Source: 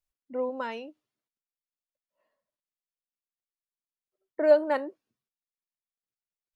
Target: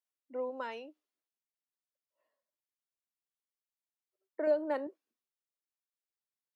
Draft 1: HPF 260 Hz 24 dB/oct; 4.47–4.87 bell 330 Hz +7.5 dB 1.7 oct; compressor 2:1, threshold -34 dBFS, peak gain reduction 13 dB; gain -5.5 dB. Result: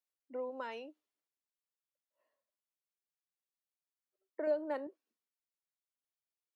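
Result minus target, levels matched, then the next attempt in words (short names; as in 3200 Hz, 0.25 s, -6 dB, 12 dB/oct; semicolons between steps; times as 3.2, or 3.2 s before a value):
compressor: peak gain reduction +4 dB
HPF 260 Hz 24 dB/oct; 4.47–4.87 bell 330 Hz +7.5 dB 1.7 oct; compressor 2:1, threshold -26 dBFS, peak gain reduction 9 dB; gain -5.5 dB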